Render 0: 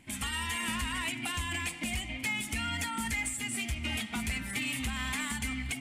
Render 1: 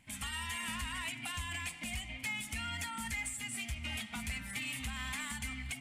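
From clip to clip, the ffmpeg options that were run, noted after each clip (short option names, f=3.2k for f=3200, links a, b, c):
-af "equalizer=f=350:w=1.7:g=-10.5,volume=-5dB"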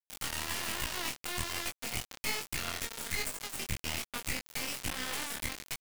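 -af "acrusher=bits=3:dc=4:mix=0:aa=0.000001,flanger=delay=20:depth=6.6:speed=1.2,volume=8dB"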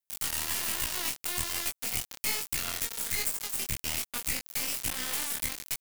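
-af "crystalizer=i=1.5:c=0,volume=-1dB"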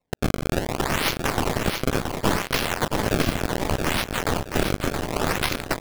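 -filter_complex "[0:a]acrusher=samples=27:mix=1:aa=0.000001:lfo=1:lforange=43.2:lforate=0.68,asplit=2[a][b];[b]aecho=0:1:673|1346|2019|2692:0.531|0.154|0.0446|0.0129[c];[a][c]amix=inputs=2:normalize=0,volume=7.5dB"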